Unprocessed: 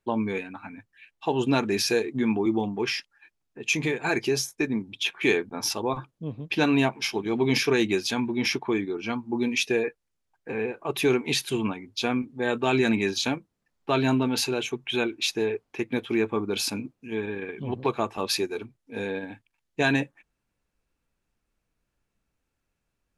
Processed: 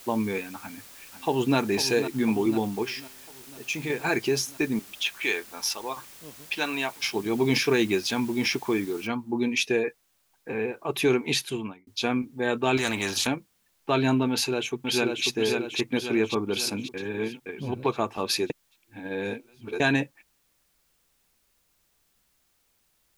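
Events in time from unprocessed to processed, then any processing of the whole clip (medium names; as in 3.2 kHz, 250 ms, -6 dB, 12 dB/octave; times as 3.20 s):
0.61–1.57 s: echo throw 500 ms, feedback 65%, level -10.5 dB
2.83–3.90 s: feedback comb 130 Hz, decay 1.2 s, mix 50%
4.79–7.03 s: high-pass 1.1 kHz 6 dB/octave
9.07 s: noise floor step -48 dB -70 dB
11.37–11.87 s: fade out
12.77–13.27 s: spectrum-flattening compressor 2:1
14.30–15.26 s: echo throw 540 ms, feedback 55%, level -3.5 dB
16.94–17.46 s: reverse
18.50–19.80 s: reverse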